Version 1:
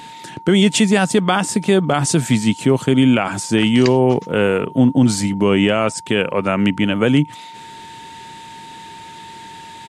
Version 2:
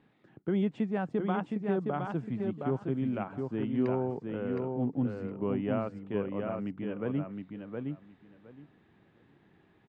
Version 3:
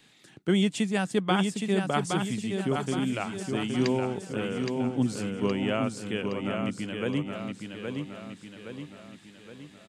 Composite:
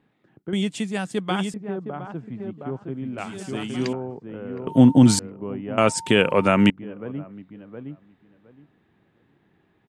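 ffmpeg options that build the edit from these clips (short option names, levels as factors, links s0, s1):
-filter_complex "[2:a]asplit=2[s0][s1];[0:a]asplit=2[s2][s3];[1:a]asplit=5[s4][s5][s6][s7][s8];[s4]atrim=end=0.532[s9];[s0]atrim=start=0.528:end=1.542[s10];[s5]atrim=start=1.538:end=3.182[s11];[s1]atrim=start=3.178:end=3.932[s12];[s6]atrim=start=3.928:end=4.672[s13];[s2]atrim=start=4.668:end=5.192[s14];[s7]atrim=start=5.188:end=5.782[s15];[s3]atrim=start=5.778:end=6.702[s16];[s8]atrim=start=6.698[s17];[s9][s10]acrossfade=d=0.004:c1=hsin:c2=hsin[s18];[s18][s11]acrossfade=d=0.004:c1=hsin:c2=hsin[s19];[s19][s12]acrossfade=d=0.004:c1=hsin:c2=hsin[s20];[s20][s13]acrossfade=d=0.004:c1=hsin:c2=hsin[s21];[s21][s14]acrossfade=d=0.004:c1=hsin:c2=hsin[s22];[s22][s15]acrossfade=d=0.004:c1=hsin:c2=hsin[s23];[s23][s16]acrossfade=d=0.004:c1=hsin:c2=hsin[s24];[s24][s17]acrossfade=d=0.004:c1=hsin:c2=hsin"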